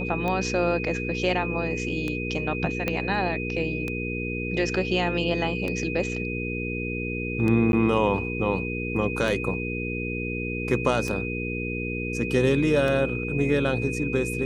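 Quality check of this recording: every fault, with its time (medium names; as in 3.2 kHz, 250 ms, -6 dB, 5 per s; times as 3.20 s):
hum 60 Hz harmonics 8 -31 dBFS
tick 33 1/3 rpm -16 dBFS
whine 2.5 kHz -32 dBFS
2.88 s: pop -12 dBFS
7.72–7.73 s: dropout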